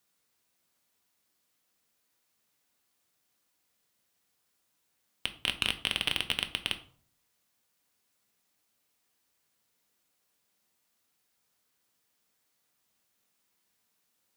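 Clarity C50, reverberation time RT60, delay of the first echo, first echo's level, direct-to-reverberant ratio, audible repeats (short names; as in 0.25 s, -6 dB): 14.0 dB, 0.50 s, none, none, 7.0 dB, none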